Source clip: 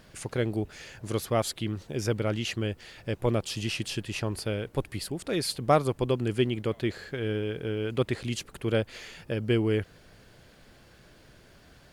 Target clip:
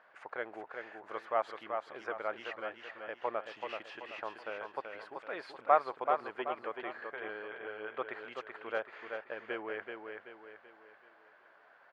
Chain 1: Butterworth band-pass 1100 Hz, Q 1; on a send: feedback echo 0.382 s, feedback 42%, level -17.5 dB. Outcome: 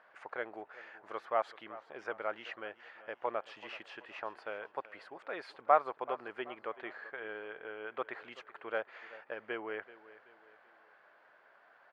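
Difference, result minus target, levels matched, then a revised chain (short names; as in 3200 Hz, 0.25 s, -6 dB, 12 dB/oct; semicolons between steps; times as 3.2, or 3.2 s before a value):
echo-to-direct -12 dB
Butterworth band-pass 1100 Hz, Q 1; on a send: feedback echo 0.382 s, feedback 42%, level -5.5 dB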